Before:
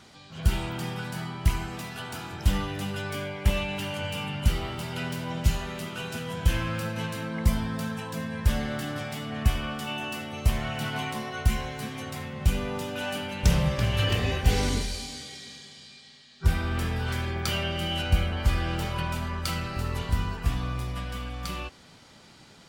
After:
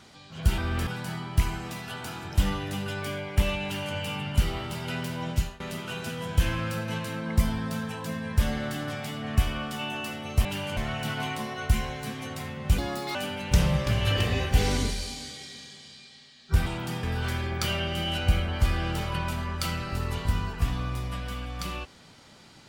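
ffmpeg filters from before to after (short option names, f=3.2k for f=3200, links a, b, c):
-filter_complex "[0:a]asplit=10[a][b][c][d][e][f][g][h][i][j];[a]atrim=end=0.582[k];[b]atrim=start=16.578:end=16.872[l];[c]atrim=start=0.948:end=5.68,asetpts=PTS-STARTPTS,afade=t=out:st=4.422:d=0.31:silence=0.0944061[m];[d]atrim=start=5.68:end=10.532,asetpts=PTS-STARTPTS,afade=t=in:d=0.004:c=hsin:silence=0.0944061[n];[e]atrim=start=3.718:end=4.042[o];[f]atrim=start=10.528:end=12.544[p];[g]atrim=start=12.54:end=13.07,asetpts=PTS-STARTPTS,asetrate=63063,aresample=44100[q];[h]atrim=start=13.066:end=16.582[r];[i]atrim=start=0.578:end=0.952[s];[j]atrim=start=16.868[t];[k][l]acrossfade=d=0.004:c1=hsin:c2=hsin[u];[m][n]concat=n=2:v=0:a=1[v];[u][v]acrossfade=d=0.004:c1=hsin:c2=hsin[w];[w][o]acrossfade=d=0.004:c1=hsin:c2=hsin[x];[x][p]acrossfade=d=0.004:c1=hsin:c2=hsin[y];[y][q]acrossfade=d=0.004:c1=hsin:c2=hsin[z];[z][r]acrossfade=d=0.004:c1=hsin:c2=hsin[aa];[aa][s]acrossfade=d=0.004:c1=hsin:c2=hsin[ab];[ab][t]acrossfade=d=0.004:c1=hsin:c2=hsin"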